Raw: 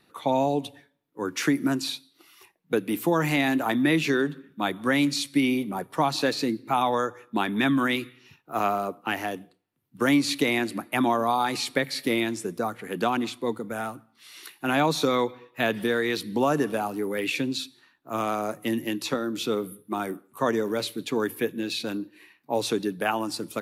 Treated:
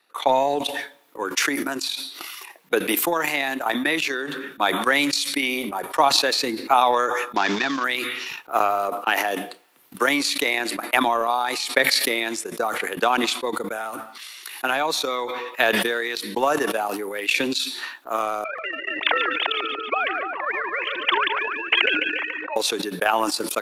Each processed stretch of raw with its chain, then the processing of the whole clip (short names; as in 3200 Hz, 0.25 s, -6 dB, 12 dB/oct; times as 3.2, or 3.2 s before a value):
7.36–7.84 CVSD 32 kbps + short-mantissa float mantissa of 8-bit
18.44–22.56 sine-wave speech + feedback echo 0.144 s, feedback 48%, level -17 dB + spectral compressor 4:1
whole clip: HPF 580 Hz 12 dB/oct; transient shaper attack +11 dB, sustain -12 dB; sustainer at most 22 dB/s; gain -1.5 dB